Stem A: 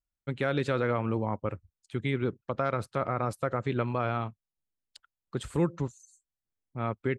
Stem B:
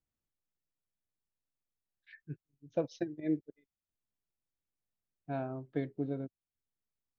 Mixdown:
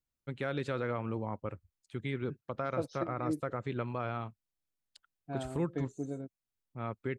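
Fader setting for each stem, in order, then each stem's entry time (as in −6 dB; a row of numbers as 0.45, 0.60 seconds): −6.5, −2.5 decibels; 0.00, 0.00 seconds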